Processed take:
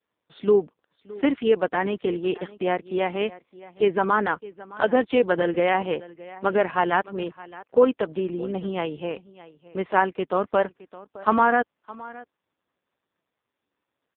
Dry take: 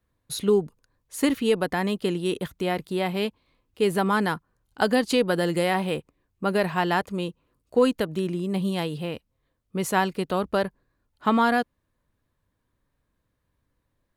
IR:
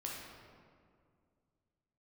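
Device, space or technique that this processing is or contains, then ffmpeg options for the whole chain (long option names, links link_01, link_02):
satellite phone: -af "highpass=310,lowpass=3200,aecho=1:1:616:0.106,volume=4dB" -ar 8000 -c:a libopencore_amrnb -b:a 4750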